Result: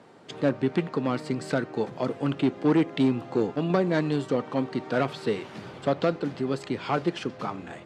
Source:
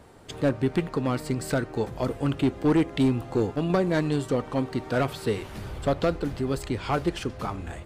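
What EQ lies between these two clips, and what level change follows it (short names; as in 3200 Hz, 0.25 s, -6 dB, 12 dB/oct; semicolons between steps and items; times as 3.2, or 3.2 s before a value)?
HPF 140 Hz 24 dB/oct; LPF 5600 Hz 12 dB/oct; 0.0 dB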